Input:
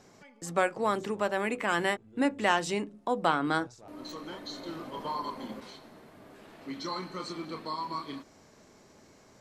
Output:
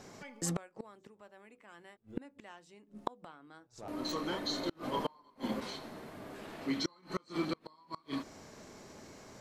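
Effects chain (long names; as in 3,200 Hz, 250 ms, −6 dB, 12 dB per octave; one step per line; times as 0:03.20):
gate with flip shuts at −27 dBFS, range −32 dB
level +5 dB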